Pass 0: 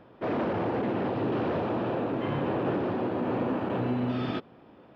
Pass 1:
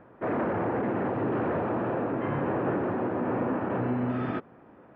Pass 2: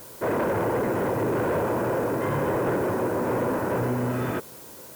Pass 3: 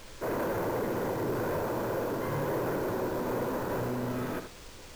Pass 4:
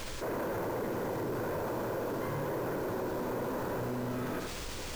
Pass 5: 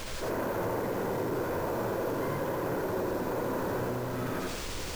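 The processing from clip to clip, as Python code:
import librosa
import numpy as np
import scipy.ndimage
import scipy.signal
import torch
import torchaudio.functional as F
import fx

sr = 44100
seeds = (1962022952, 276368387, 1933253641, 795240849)

y1 = fx.high_shelf_res(x, sr, hz=2700.0, db=-13.5, q=1.5)
y2 = y1 + 0.37 * np.pad(y1, (int(2.0 * sr / 1000.0), 0))[:len(y1)]
y2 = fx.dmg_noise_colour(y2, sr, seeds[0], colour='blue', level_db=-50.0)
y2 = fx.fold_sine(y2, sr, drive_db=4, ceiling_db=-16.5)
y2 = y2 * 10.0 ** (-3.0 / 20.0)
y3 = fx.sample_hold(y2, sr, seeds[1], rate_hz=13000.0, jitter_pct=0)
y3 = fx.dmg_noise_colour(y3, sr, seeds[2], colour='brown', level_db=-43.0)
y3 = y3 + 10.0 ** (-9.0 / 20.0) * np.pad(y3, (int(76 * sr / 1000.0), 0))[:len(y3)]
y3 = y3 * 10.0 ** (-7.0 / 20.0)
y4 = fx.env_flatten(y3, sr, amount_pct=70)
y4 = y4 * 10.0 ** (-4.5 / 20.0)
y5 = y4 + 10.0 ** (-3.5 / 20.0) * np.pad(y4, (int(87 * sr / 1000.0), 0))[:len(y4)]
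y5 = y5 * 10.0 ** (1.5 / 20.0)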